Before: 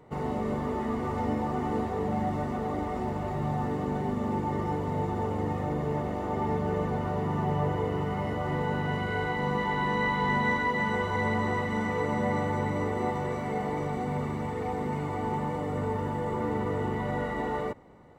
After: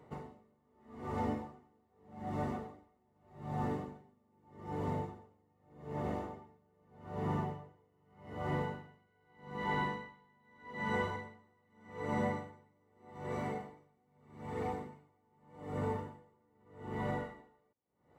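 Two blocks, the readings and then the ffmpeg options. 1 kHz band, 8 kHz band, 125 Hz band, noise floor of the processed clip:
-12.0 dB, -11.5 dB, -12.0 dB, -74 dBFS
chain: -af "highpass=54,aeval=exprs='val(0)*pow(10,-39*(0.5-0.5*cos(2*PI*0.82*n/s))/20)':c=same,volume=-4.5dB"

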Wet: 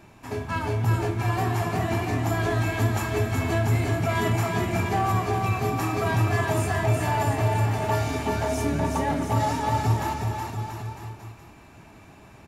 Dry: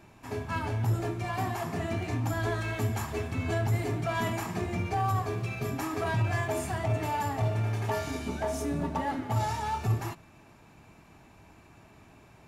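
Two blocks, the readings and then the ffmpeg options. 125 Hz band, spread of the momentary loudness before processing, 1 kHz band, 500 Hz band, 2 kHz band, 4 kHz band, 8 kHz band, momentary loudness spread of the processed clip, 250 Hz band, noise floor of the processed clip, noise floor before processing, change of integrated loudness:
+6.0 dB, 4 LU, +6.5 dB, +6.0 dB, +6.0 dB, +6.0 dB, +6.0 dB, 8 LU, +6.0 dB, -49 dBFS, -56 dBFS, +6.0 dB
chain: -af "aecho=1:1:370|684.5|951.8|1179|1372:0.631|0.398|0.251|0.158|0.1,volume=4dB"

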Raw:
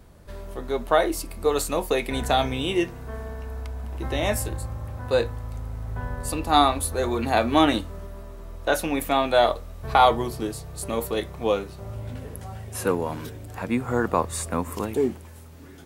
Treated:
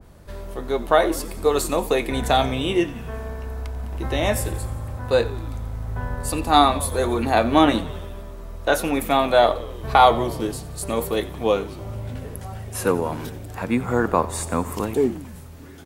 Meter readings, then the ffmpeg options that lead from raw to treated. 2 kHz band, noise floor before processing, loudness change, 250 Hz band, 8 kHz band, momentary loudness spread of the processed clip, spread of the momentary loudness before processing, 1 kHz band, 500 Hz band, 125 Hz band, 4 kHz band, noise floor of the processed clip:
+2.5 dB, -44 dBFS, +3.0 dB, +3.0 dB, +2.0 dB, 16 LU, 17 LU, +3.0 dB, +3.0 dB, +3.0 dB, +2.0 dB, -38 dBFS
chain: -filter_complex "[0:a]asplit=2[a][b];[b]asplit=6[c][d][e][f][g][h];[c]adelay=90,afreqshift=-62,volume=-17dB[i];[d]adelay=180,afreqshift=-124,volume=-20.9dB[j];[e]adelay=270,afreqshift=-186,volume=-24.8dB[k];[f]adelay=360,afreqshift=-248,volume=-28.6dB[l];[g]adelay=450,afreqshift=-310,volume=-32.5dB[m];[h]adelay=540,afreqshift=-372,volume=-36.4dB[n];[i][j][k][l][m][n]amix=inputs=6:normalize=0[o];[a][o]amix=inputs=2:normalize=0,adynamicequalizer=threshold=0.02:dfrequency=1800:dqfactor=0.7:tfrequency=1800:tqfactor=0.7:attack=5:release=100:ratio=0.375:range=2:mode=cutabove:tftype=highshelf,volume=3dB"

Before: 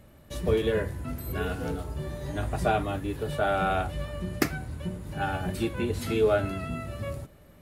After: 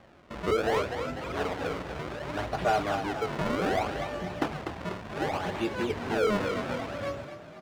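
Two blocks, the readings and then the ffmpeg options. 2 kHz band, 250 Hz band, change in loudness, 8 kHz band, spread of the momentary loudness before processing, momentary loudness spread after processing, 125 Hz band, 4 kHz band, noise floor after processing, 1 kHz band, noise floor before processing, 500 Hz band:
+0.5 dB, -1.0 dB, -1.0 dB, -3.0 dB, 11 LU, 9 LU, -6.5 dB, +1.0 dB, -47 dBFS, +1.0 dB, -54 dBFS, -1.0 dB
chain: -filter_complex "[0:a]acrusher=samples=31:mix=1:aa=0.000001:lfo=1:lforange=49.6:lforate=0.66,highshelf=f=8k:g=-10,asplit=2[a][b];[b]asplit=5[c][d][e][f][g];[c]adelay=246,afreqshift=34,volume=-11.5dB[h];[d]adelay=492,afreqshift=68,volume=-17.3dB[i];[e]adelay=738,afreqshift=102,volume=-23.2dB[j];[f]adelay=984,afreqshift=136,volume=-29dB[k];[g]adelay=1230,afreqshift=170,volume=-34.9dB[l];[h][i][j][k][l]amix=inputs=5:normalize=0[m];[a][m]amix=inputs=2:normalize=0,asplit=2[n][o];[o]highpass=f=720:p=1,volume=19dB,asoftclip=type=tanh:threshold=-7.5dB[p];[n][p]amix=inputs=2:normalize=0,lowpass=f=2.2k:p=1,volume=-6dB,volume=-6.5dB"

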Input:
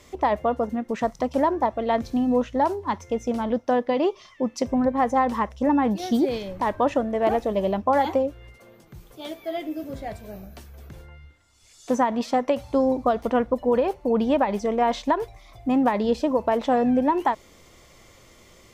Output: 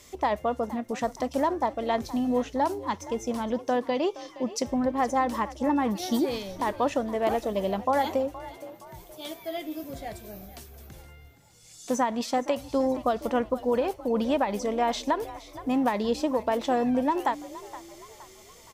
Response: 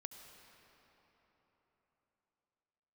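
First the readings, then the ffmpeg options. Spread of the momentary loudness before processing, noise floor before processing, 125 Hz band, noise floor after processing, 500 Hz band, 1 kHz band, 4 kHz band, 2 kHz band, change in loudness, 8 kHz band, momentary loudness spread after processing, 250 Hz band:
10 LU, -53 dBFS, -4.5 dB, -51 dBFS, -4.0 dB, -4.0 dB, +1.0 dB, -2.0 dB, -4.0 dB, n/a, 16 LU, -4.5 dB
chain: -filter_complex "[0:a]highshelf=f=3.9k:g=11.5,asplit=2[a][b];[b]asplit=4[c][d][e][f];[c]adelay=469,afreqshift=43,volume=-16.5dB[g];[d]adelay=938,afreqshift=86,volume=-23.6dB[h];[e]adelay=1407,afreqshift=129,volume=-30.8dB[i];[f]adelay=1876,afreqshift=172,volume=-37.9dB[j];[g][h][i][j]amix=inputs=4:normalize=0[k];[a][k]amix=inputs=2:normalize=0,volume=-4.5dB"

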